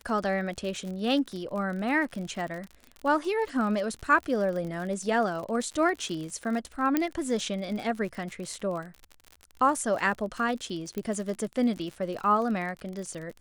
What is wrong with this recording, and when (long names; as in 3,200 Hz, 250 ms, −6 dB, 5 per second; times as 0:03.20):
surface crackle 52 per second −34 dBFS
0:06.97: click −11 dBFS
0:10.98: click −20 dBFS